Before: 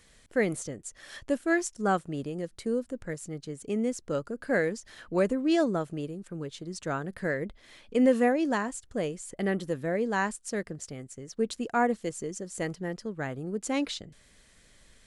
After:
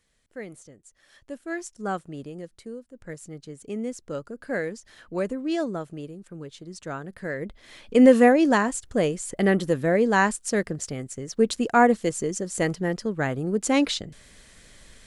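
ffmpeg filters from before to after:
ffmpeg -i in.wav -af "volume=19dB,afade=type=in:start_time=1.19:duration=0.68:silence=0.375837,afade=type=out:start_time=2.37:duration=0.53:silence=0.281838,afade=type=in:start_time=2.9:duration=0.2:silence=0.251189,afade=type=in:start_time=7.28:duration=0.74:silence=0.316228" out.wav

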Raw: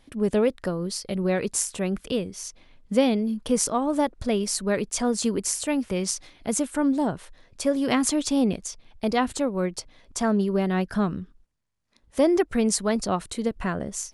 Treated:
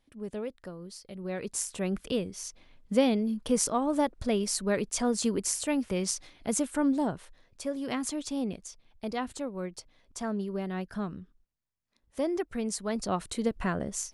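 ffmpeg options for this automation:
ffmpeg -i in.wav -af "volume=4dB,afade=type=in:start_time=1.17:duration=0.78:silence=0.281838,afade=type=out:start_time=6.9:duration=0.74:silence=0.473151,afade=type=in:start_time=12.8:duration=0.52:silence=0.421697" out.wav

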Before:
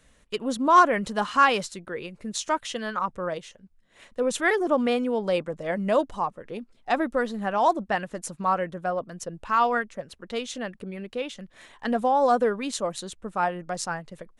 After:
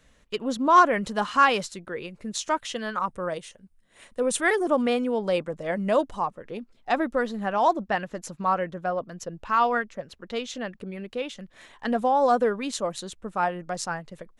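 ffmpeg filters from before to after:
ffmpeg -i in.wav -af "asetnsamples=nb_out_samples=441:pad=0,asendcmd='0.85 equalizer g -2;2.95 equalizer g 10;4.82 equalizer g 0.5;6.35 equalizer g -5.5;7.66 equalizer g -12;10.81 equalizer g -3',equalizer=frequency=9200:width_type=o:width=0.34:gain=-9" out.wav

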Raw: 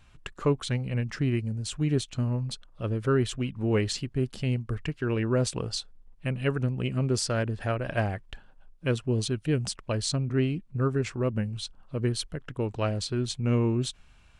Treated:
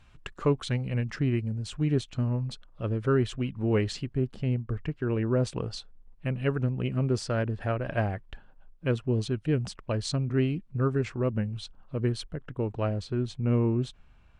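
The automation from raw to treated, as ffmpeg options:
ffmpeg -i in.wav -af "asetnsamples=nb_out_samples=441:pad=0,asendcmd='1.16 lowpass f 2900;4.17 lowpass f 1200;5.43 lowpass f 2200;10.05 lowpass f 4100;11.05 lowpass f 2600;12.24 lowpass f 1300',lowpass=frequency=5300:poles=1" out.wav

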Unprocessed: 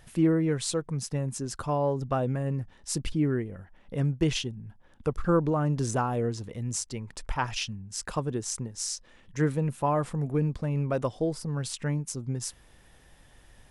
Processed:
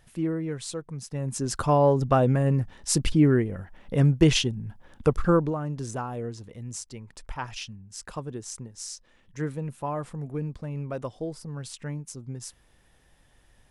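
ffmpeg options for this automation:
ffmpeg -i in.wav -af "volume=7dB,afade=type=in:start_time=1.1:duration=0.48:silence=0.251189,afade=type=out:start_time=5.07:duration=0.52:silence=0.251189" out.wav

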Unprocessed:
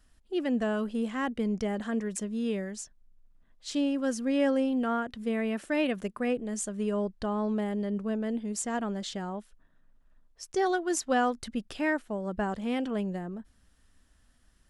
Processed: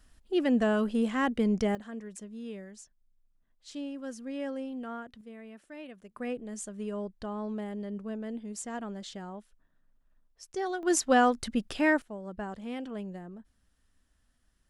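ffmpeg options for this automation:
ffmpeg -i in.wav -af "asetnsamples=nb_out_samples=441:pad=0,asendcmd='1.75 volume volume -10dB;5.21 volume volume -17dB;6.11 volume volume -6dB;10.83 volume volume 3.5dB;12.02 volume volume -7dB',volume=3dB" out.wav

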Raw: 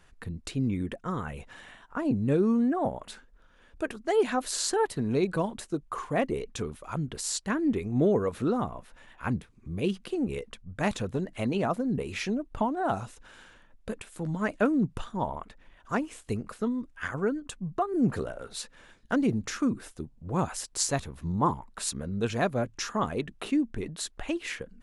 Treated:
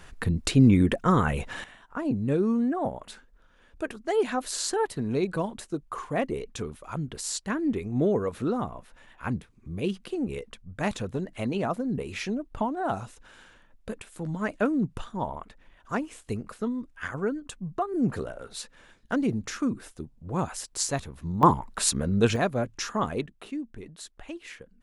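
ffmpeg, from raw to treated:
ffmpeg -i in.wav -af "asetnsamples=nb_out_samples=441:pad=0,asendcmd='1.64 volume volume -0.5dB;21.43 volume volume 7.5dB;22.36 volume volume 1dB;23.26 volume volume -8dB',volume=11dB" out.wav

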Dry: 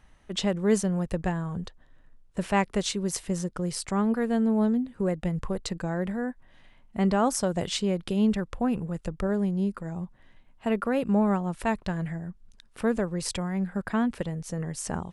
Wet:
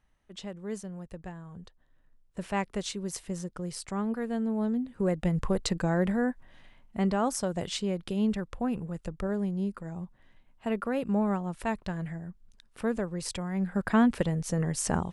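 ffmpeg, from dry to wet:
ffmpeg -i in.wav -af "volume=10.5dB,afade=type=in:start_time=1.44:duration=1.16:silence=0.421697,afade=type=in:start_time=4.62:duration=0.94:silence=0.354813,afade=type=out:start_time=6.28:duration=0.85:silence=0.446684,afade=type=in:start_time=13.45:duration=0.54:silence=0.421697" out.wav

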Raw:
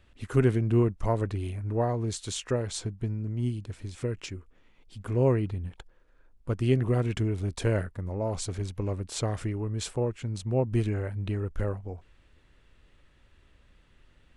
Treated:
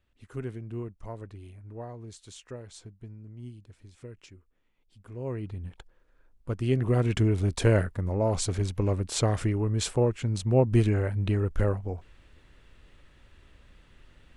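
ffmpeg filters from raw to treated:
ffmpeg -i in.wav -af "volume=4.5dB,afade=type=in:start_time=5.23:duration=0.46:silence=0.281838,afade=type=in:start_time=6.7:duration=0.56:silence=0.473151" out.wav

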